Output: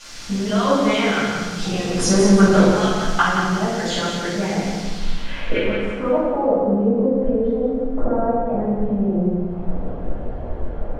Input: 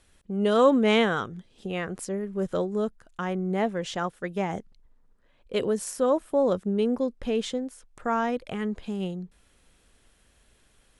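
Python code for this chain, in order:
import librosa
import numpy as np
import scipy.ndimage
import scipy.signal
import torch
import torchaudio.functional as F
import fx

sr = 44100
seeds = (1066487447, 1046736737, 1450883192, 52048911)

p1 = fx.spec_dropout(x, sr, seeds[0], share_pct=23)
p2 = fx.recorder_agc(p1, sr, target_db=-18.0, rise_db_per_s=55.0, max_gain_db=30)
p3 = fx.leveller(p2, sr, passes=3, at=(1.94, 2.84))
p4 = fx.dmg_noise_colour(p3, sr, seeds[1], colour='white', level_db=-38.0)
p5 = fx.filter_sweep_lowpass(p4, sr, from_hz=5700.0, to_hz=630.0, start_s=4.7, end_s=6.57, q=2.0)
p6 = p5 + fx.echo_feedback(p5, sr, ms=177, feedback_pct=38, wet_db=-6.0, dry=0)
p7 = fx.room_shoebox(p6, sr, seeds[2], volume_m3=470.0, walls='mixed', distance_m=7.0)
y = p7 * librosa.db_to_amplitude(-11.5)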